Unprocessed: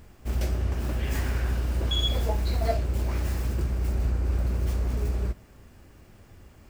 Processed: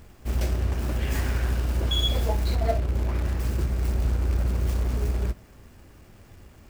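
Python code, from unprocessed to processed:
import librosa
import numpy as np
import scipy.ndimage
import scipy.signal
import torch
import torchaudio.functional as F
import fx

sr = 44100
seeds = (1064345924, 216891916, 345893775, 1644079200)

p1 = fx.lowpass(x, sr, hz=2100.0, slope=6, at=(2.55, 3.4))
p2 = fx.quant_companded(p1, sr, bits=4)
p3 = p1 + (p2 * 10.0 ** (-9.5 / 20.0))
y = p3 * 10.0 ** (-1.0 / 20.0)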